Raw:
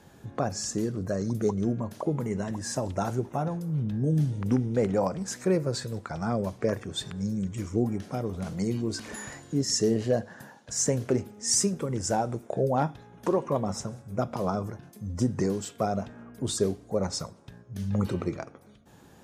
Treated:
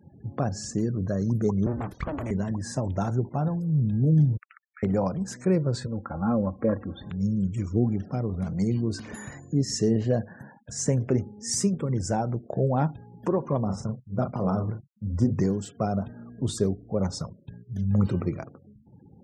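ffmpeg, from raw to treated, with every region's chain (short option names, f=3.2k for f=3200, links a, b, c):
-filter_complex "[0:a]asettb=1/sr,asplit=3[a][b][c];[a]atrim=end=1.664[d];[b]atrim=start=1.66:end=2.31,asetpts=PTS-STARTPTS,afade=t=in:d=0.004:c=qsin,afade=t=out:st=0.646:d=0.004:c=qsin,equalizer=f=300:w=2.4:g=-15,acontrast=38,aeval=exprs='abs(val(0))':c=same[e];[c]atrim=start=2.306[f];[d][e]acrossfade=d=0.004:c1=hsin:c2=qsin[g];[g][f]acrossfade=d=0.004:c1=qsin:c2=hsin,asettb=1/sr,asplit=3[h][i][j];[h]atrim=end=4.374[k];[i]atrim=start=4.37:end=4.83,asetpts=PTS-STARTPTS,afade=t=in:d=0.004:c=qsin,afade=t=out:st=0.456:d=0.004:c=qsin,asuperpass=centerf=2100:order=20:qfactor=1.2,afreqshift=-180[l];[j]atrim=start=4.826[m];[k][l]acrossfade=d=0.004:c1=hsin:c2=qsin[n];[n][m]acrossfade=d=0.004:c1=qsin:c2=hsin,asettb=1/sr,asplit=3[o][p][q];[o]atrim=end=5.864[r];[p]atrim=start=5.86:end=7.1,asetpts=PTS-STARTPTS,afade=t=in:d=0.004:c=qsin,afade=t=out:st=1.236:d=0.004:c=qsin,lowpass=f=3.3k:w=0.5412,lowpass=f=3.3k:w=1.3066,highshelf=f=1.6k:t=q:w=1.5:g=-6.5,aecho=1:1:3.7:0.67,atrim=end_sample=54684[s];[q]atrim=start=7.096[t];[r][s]acrossfade=d=0.004:c1=hsin:c2=qsin[u];[u][t]acrossfade=d=0.004:c1=qsin:c2=hsin,asettb=1/sr,asplit=3[v][w][x];[v]atrim=end=13.654[y];[w]atrim=start=13.65:end=15.34,asetpts=PTS-STARTPTS,afade=t=in:d=0.004:c=qsin,afade=t=out:st=1.686:d=0.004:c=qsin,agate=range=-33dB:threshold=-37dB:ratio=3:release=100:detection=peak,equalizer=f=7.1k:w=0.91:g=-5,asplit=2[z][aa];[aa]adelay=37,volume=-6dB[ab];[z][ab]amix=inputs=2:normalize=0,atrim=end_sample=74529[ac];[x]atrim=start=15.336[ad];[y][ac]acrossfade=d=0.004:c1=hsin:c2=qsin[ae];[ae][ad]acrossfade=d=0.004:c1=qsin:c2=hsin,highpass=60,afftfilt=real='re*gte(hypot(re,im),0.00501)':imag='im*gte(hypot(re,im),0.00501)':win_size=1024:overlap=0.75,bass=f=250:g=8,treble=f=4k:g=-3,volume=-1.5dB"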